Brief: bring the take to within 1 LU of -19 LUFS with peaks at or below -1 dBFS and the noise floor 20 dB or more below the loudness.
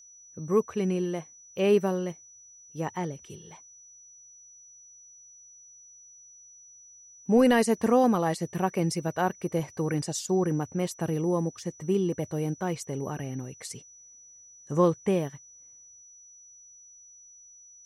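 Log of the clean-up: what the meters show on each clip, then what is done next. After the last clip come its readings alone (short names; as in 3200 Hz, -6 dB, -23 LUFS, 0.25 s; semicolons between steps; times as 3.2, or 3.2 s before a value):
steady tone 5900 Hz; tone level -50 dBFS; loudness -27.5 LUFS; peak -11.5 dBFS; loudness target -19.0 LUFS
-> notch 5900 Hz, Q 30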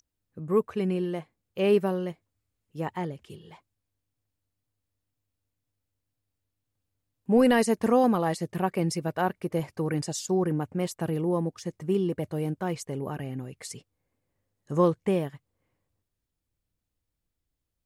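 steady tone none; loudness -27.5 LUFS; peak -11.5 dBFS; loudness target -19.0 LUFS
-> gain +8.5 dB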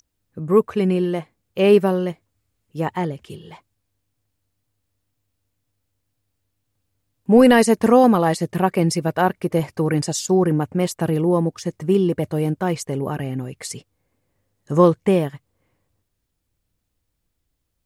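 loudness -19.0 LUFS; peak -3.0 dBFS; noise floor -75 dBFS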